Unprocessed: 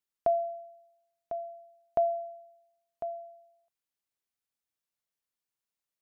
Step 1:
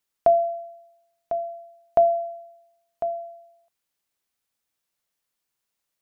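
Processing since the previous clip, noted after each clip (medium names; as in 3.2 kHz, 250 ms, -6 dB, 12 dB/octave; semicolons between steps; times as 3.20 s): hum notches 50/100/150/200/250/300/350/400/450 Hz; trim +9 dB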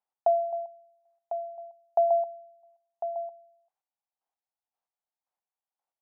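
square tremolo 1.9 Hz, depth 60%, duty 25%; band-pass filter 790 Hz, Q 4.4; trim +6.5 dB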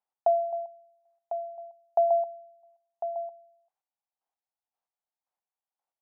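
no audible change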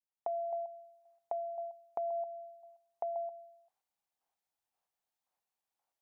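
fade-in on the opening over 0.57 s; peak limiter -25.5 dBFS, peak gain reduction 10.5 dB; compression 6:1, threshold -38 dBFS, peak gain reduction 10 dB; trim +3 dB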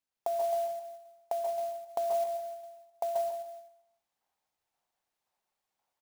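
delay 151 ms -9.5 dB; on a send at -6.5 dB: reverberation RT60 0.30 s, pre-delay 122 ms; on the sum: sampling jitter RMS 0.023 ms; trim +4 dB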